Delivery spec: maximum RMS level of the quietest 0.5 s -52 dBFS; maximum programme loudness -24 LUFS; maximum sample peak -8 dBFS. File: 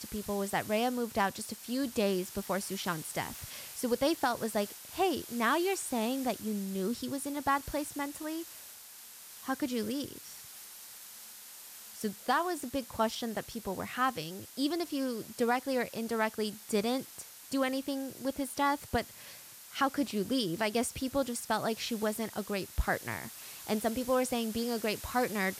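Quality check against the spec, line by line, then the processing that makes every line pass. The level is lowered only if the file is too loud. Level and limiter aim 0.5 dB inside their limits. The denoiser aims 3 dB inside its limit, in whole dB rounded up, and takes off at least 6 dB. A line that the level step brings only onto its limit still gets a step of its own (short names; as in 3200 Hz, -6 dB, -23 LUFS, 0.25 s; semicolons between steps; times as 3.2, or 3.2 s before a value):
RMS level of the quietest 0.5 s -51 dBFS: fail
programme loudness -33.5 LUFS: OK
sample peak -17.5 dBFS: OK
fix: denoiser 6 dB, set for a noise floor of -51 dBFS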